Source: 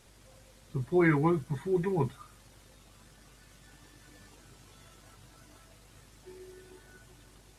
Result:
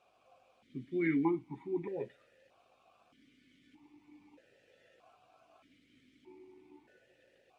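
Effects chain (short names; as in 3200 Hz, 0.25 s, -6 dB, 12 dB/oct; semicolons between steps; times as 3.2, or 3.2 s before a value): vowel sequencer 1.6 Hz; gain +5 dB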